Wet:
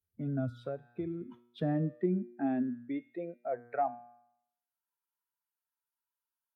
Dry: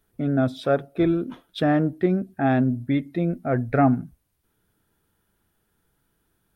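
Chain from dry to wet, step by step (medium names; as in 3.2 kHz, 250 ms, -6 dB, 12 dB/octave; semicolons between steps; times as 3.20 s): expander on every frequency bin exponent 1.5; high-pass sweep 87 Hz -> 950 Hz, 0.93–4.11 s; feedback comb 120 Hz, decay 0.63 s, harmonics all, mix 60%; dynamic bell 1.3 kHz, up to -6 dB, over -42 dBFS, Q 1.5; 0.62–1.21 s: compression, threshold -32 dBFS, peak gain reduction 8 dB; treble shelf 2.9 kHz -11.5 dB; three bands compressed up and down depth 40%; trim -4 dB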